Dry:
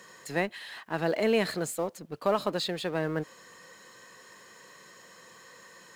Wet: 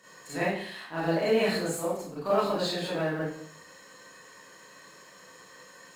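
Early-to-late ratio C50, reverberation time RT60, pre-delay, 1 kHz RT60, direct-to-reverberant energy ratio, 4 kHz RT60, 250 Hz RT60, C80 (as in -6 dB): -0.5 dB, 0.65 s, 30 ms, 0.60 s, -10.0 dB, 0.50 s, 0.65 s, 5.5 dB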